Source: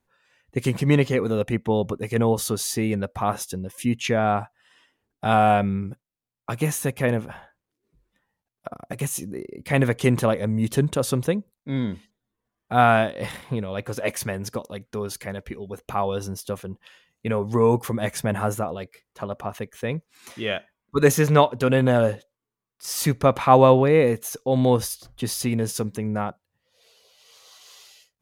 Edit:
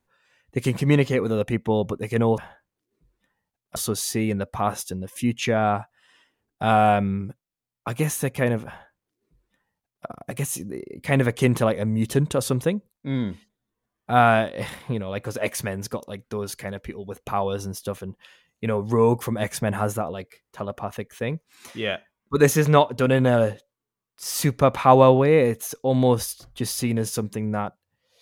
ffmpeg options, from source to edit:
-filter_complex "[0:a]asplit=3[a][b][c];[a]atrim=end=2.382[d];[b]atrim=start=7.298:end=8.682[e];[c]atrim=start=2.378[f];[d][e]acrossfade=d=0.004:c1=hsin:c2=hsin[g];[g][f]acrossfade=d=0.004:c1=hsin:c2=hsin"

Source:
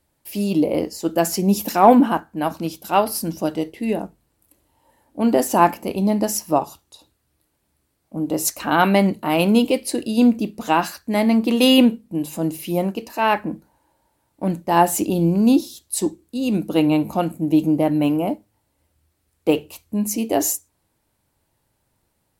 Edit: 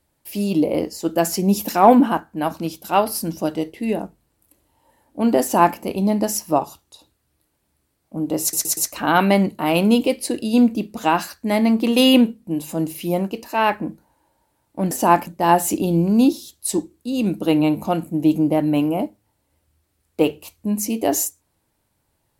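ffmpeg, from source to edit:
-filter_complex "[0:a]asplit=6[a][b][c][d][e][f];[a]atrim=end=8.532[g];[b]atrim=start=8.408:end=8.532[h];[c]atrim=start=8.408:end=8.532[i];[d]atrim=start=8.408:end=14.552[j];[e]atrim=start=5.418:end=5.782[k];[f]atrim=start=14.548[l];[g][h]acrossfade=d=0.004:c1=hsin:c2=hsin[m];[m][i]acrossfade=d=0.004:c1=hsin:c2=hsin[n];[n][j]acrossfade=d=0.004:c1=hsin:c2=hsin[o];[o][k]acrossfade=d=0.004:c1=hsin:c2=hsin[p];[p][l]acrossfade=d=0.004:c1=hsin:c2=hsin"

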